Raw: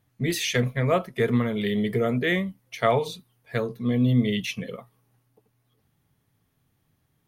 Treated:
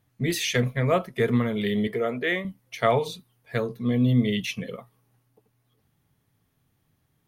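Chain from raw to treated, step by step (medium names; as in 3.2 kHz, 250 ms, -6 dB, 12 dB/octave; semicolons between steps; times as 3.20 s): 1.87–2.45 s: tone controls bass -13 dB, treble -6 dB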